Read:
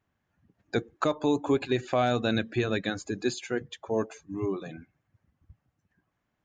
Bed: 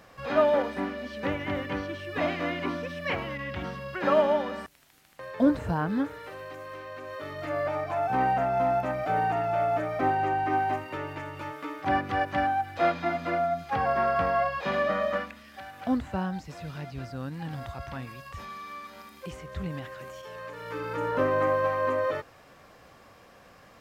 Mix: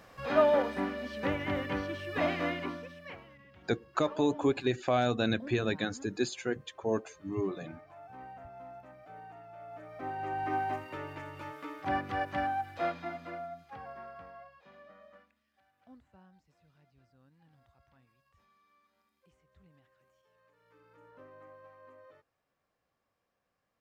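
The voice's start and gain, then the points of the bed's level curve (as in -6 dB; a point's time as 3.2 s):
2.95 s, -2.5 dB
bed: 2.47 s -2 dB
3.41 s -23 dB
9.59 s -23 dB
10.45 s -6 dB
12.65 s -6 dB
14.71 s -29 dB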